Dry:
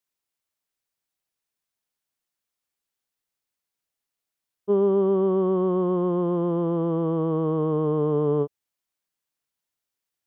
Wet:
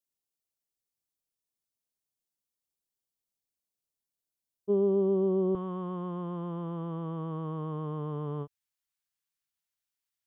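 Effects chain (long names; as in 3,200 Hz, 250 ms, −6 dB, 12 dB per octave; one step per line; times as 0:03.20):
parametric band 1,600 Hz −14 dB 1.8 octaves, from 0:05.55 410 Hz
level −3.5 dB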